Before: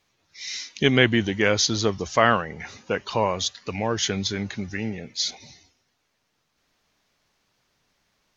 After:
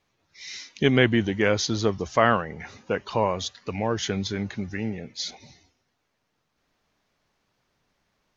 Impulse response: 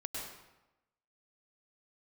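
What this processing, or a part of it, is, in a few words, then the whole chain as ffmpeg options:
behind a face mask: -af "highshelf=f=2.3k:g=-7.5"

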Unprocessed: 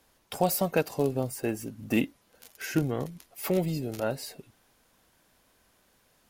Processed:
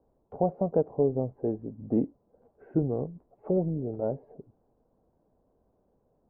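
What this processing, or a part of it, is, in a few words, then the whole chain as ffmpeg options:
under water: -af "lowpass=f=760:w=0.5412,lowpass=f=760:w=1.3066,equalizer=f=440:t=o:w=0.22:g=4.5"

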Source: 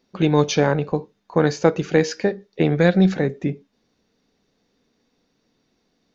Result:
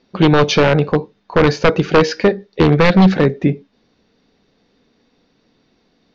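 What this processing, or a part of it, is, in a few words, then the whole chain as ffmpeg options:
synthesiser wavefolder: -af "aeval=exprs='0.266*(abs(mod(val(0)/0.266+3,4)-2)-1)':c=same,lowpass=f=5.1k:w=0.5412,lowpass=f=5.1k:w=1.3066,volume=8.5dB"

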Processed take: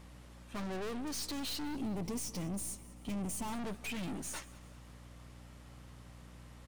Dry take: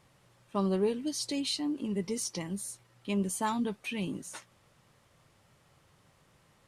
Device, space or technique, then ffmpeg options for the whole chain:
valve amplifier with mains hum: -filter_complex "[0:a]aeval=exprs='(tanh(200*val(0)+0.5)-tanh(0.5))/200':c=same,aeval=exprs='val(0)+0.001*(sin(2*PI*60*n/s)+sin(2*PI*2*60*n/s)/2+sin(2*PI*3*60*n/s)/3+sin(2*PI*4*60*n/s)/4+sin(2*PI*5*60*n/s)/5)':c=same,asettb=1/sr,asplit=3[a][b][c];[a]atrim=end=1.764[d];[b]atrim=start=1.76:end=3.53,asetpts=PTS-STARTPTS,afade=t=in:d=0.004:c=qsin,afade=t=out:st=1.766:d=0.004:c=qsin,equalizer=f=100:t=o:w=0.67:g=7,equalizer=f=250:t=o:w=0.67:g=4,equalizer=f=1.6k:t=o:w=0.67:g=-8,equalizer=f=4k:t=o:w=0.67:g=-6[e];[c]atrim=start=3.526[f];[d][e]acrossfade=d=0.004:c1=hsin:c2=qsin[g];[g][f]acrossfade=d=0.004:c1=qsin:c2=hsin,aecho=1:1:192|384|576:0.1|0.046|0.0212,volume=7.5dB"

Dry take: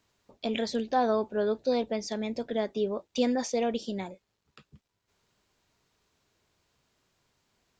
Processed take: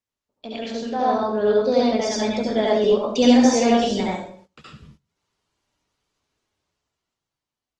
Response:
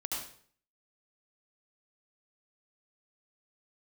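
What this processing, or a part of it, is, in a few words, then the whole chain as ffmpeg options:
speakerphone in a meeting room: -filter_complex "[1:a]atrim=start_sample=2205[a];[0:a][a]afir=irnorm=-1:irlink=0,dynaudnorm=f=240:g=11:m=14.5dB,agate=range=-18dB:threshold=-47dB:ratio=16:detection=peak,volume=-1.5dB" -ar 48000 -c:a libopus -b:a 20k

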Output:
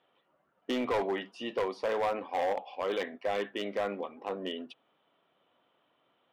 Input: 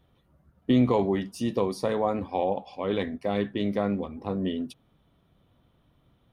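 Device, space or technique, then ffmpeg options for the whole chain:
megaphone: -af "highpass=480,lowpass=2.6k,equalizer=f=2.9k:t=o:w=0.35:g=6.5,asoftclip=type=hard:threshold=-26dB,lowshelf=f=210:g=-4.5,volume=1.5dB"

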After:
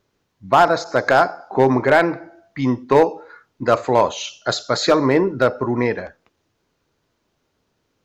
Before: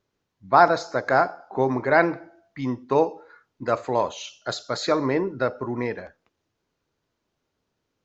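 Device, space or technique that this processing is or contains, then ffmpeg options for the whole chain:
limiter into clipper: -filter_complex "[0:a]asettb=1/sr,asplit=3[a][b][c];[a]atrim=end=0.844[d];[b]atrim=start=0.84:end=1.54,asetpts=PTS-STARTPTS,afade=t=in:d=0.004:c=qsin,afade=t=out:st=0.696:d=0.004:c=qsin,adynamicequalizer=threshold=0.00891:dfrequency=5200:dqfactor=0.77:tfrequency=5200:tqfactor=0.77:attack=5:release=100:ratio=0.375:range=2:mode=boostabove:tftype=bell[e];[c]atrim=start=1.536[f];[d][e]acrossfade=d=0.004:c1=hsin:c2=qsin[g];[g][f]acrossfade=d=0.004:c1=qsin:c2=hsin,alimiter=limit=-9dB:level=0:latency=1:release=404,asoftclip=type=hard:threshold=-13.5dB,volume=8dB"

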